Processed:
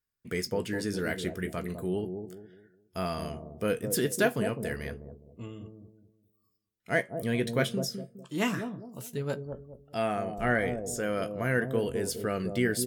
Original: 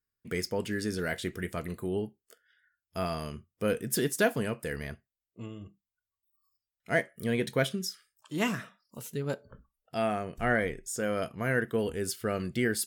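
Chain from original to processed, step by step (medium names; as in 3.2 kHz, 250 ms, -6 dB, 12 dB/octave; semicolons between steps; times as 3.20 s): doubling 16 ms -12.5 dB; on a send: bucket-brigade echo 206 ms, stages 1024, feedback 34%, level -6.5 dB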